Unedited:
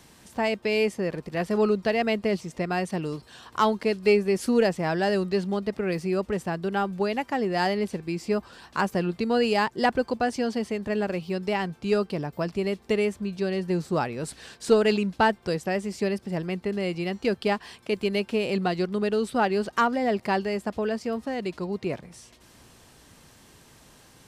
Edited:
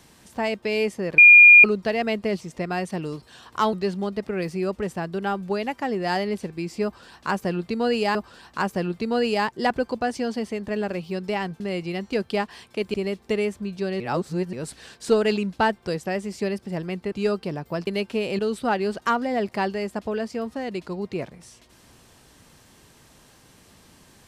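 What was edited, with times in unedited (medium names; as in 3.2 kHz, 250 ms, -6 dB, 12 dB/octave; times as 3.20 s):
1.18–1.64 s: bleep 2.42 kHz -6 dBFS
3.73–5.23 s: delete
8.34–9.65 s: loop, 2 plays
11.79–12.54 s: swap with 16.72–18.06 s
13.60–14.13 s: reverse
18.58–19.10 s: delete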